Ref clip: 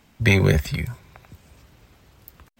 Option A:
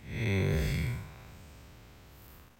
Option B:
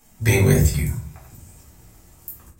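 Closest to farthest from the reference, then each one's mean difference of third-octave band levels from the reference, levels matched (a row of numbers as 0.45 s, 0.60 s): B, A; 5.5 dB, 8.5 dB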